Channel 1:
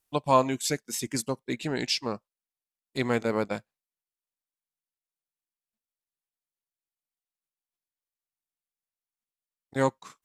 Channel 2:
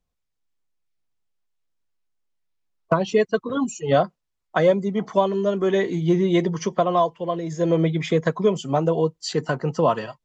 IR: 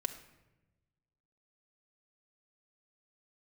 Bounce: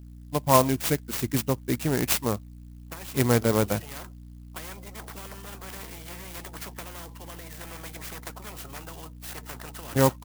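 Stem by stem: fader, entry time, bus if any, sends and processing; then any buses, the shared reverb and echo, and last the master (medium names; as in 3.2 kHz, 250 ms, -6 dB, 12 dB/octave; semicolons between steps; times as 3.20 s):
-1.0 dB, 0.20 s, no send, steep low-pass 8.5 kHz 36 dB/octave; peaking EQ 90 Hz +15 dB 0.79 oct
-19.5 dB, 0.00 s, no send, low-pass 4.6 kHz 12 dB/octave; spectrum-flattening compressor 10:1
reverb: none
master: level rider gain up to 4.5 dB; hum 60 Hz, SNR 15 dB; sampling jitter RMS 0.075 ms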